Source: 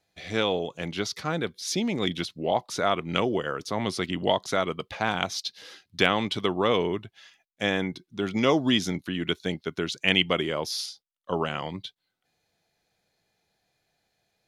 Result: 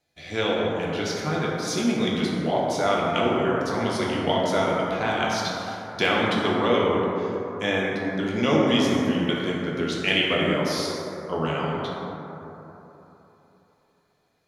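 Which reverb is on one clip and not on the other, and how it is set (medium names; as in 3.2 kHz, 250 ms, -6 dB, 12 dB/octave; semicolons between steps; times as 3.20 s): plate-style reverb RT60 3.4 s, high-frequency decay 0.3×, DRR -4.5 dB; trim -2.5 dB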